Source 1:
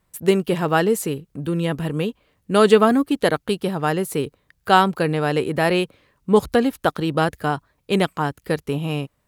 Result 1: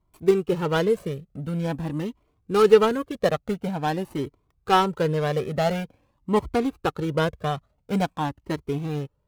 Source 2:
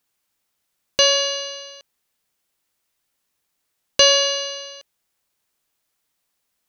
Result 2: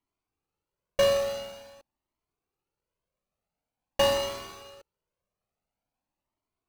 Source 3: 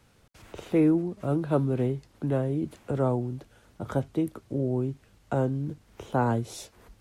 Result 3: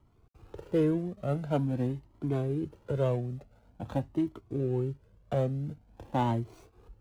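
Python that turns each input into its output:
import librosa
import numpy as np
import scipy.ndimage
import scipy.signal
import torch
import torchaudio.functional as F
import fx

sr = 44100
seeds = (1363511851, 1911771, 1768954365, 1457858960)

y = scipy.signal.medfilt(x, 25)
y = fx.comb_cascade(y, sr, direction='rising', hz=0.47)
y = y * librosa.db_to_amplitude(2.0)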